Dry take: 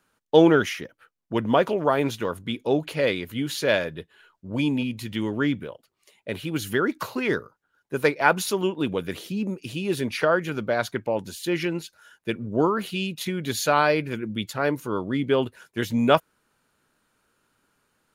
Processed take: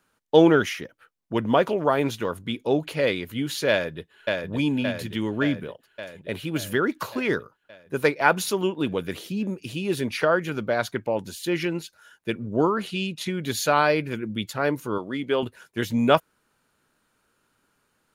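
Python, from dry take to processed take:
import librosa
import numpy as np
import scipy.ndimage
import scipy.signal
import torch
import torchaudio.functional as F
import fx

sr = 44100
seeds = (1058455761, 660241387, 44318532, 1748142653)

y = fx.echo_throw(x, sr, start_s=3.7, length_s=0.8, ms=570, feedback_pct=65, wet_db=-3.0)
y = fx.lowpass(y, sr, hz=10000.0, slope=12, at=(12.76, 13.39))
y = fx.highpass(y, sr, hz=360.0, slope=6, at=(14.98, 15.43))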